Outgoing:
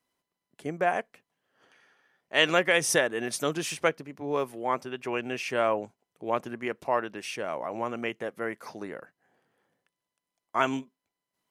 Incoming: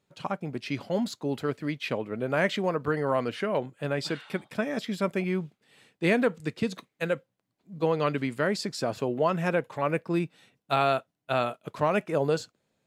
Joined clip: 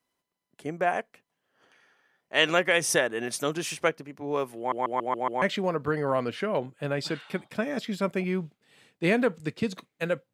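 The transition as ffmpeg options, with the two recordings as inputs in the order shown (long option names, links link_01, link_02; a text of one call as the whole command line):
ffmpeg -i cue0.wav -i cue1.wav -filter_complex "[0:a]apad=whole_dur=10.33,atrim=end=10.33,asplit=6[link_01][link_02][link_03][link_04][link_05][link_06];[link_01]atrim=end=4.722[link_07];[link_02]atrim=start=4.578:end=4.722[link_08];[link_03]atrim=start=4.578:end=4.722[link_09];[link_04]atrim=start=4.578:end=4.722[link_10];[link_05]atrim=start=4.578:end=4.722[link_11];[link_06]atrim=start=4.578:end=4.722[link_12];[1:a]atrim=start=2.418:end=7.33[link_13];[link_07][link_08]acrossfade=duration=0.004:curve1=hsin:curve2=hsin[link_14];[link_14][link_09]acrossfade=duration=0.004:curve1=hsin:curve2=hsin[link_15];[link_15][link_10]acrossfade=duration=0.004:curve1=hsin:curve2=hsin[link_16];[link_16][link_11]acrossfade=duration=0.004:curve1=hsin:curve2=hsin[link_17];[link_17][link_12]acrossfade=duration=0.004:curve1=hsin:curve2=hsin[link_18];[link_18][link_13]acrossfade=duration=0.004:curve1=hsin:curve2=hsin" out.wav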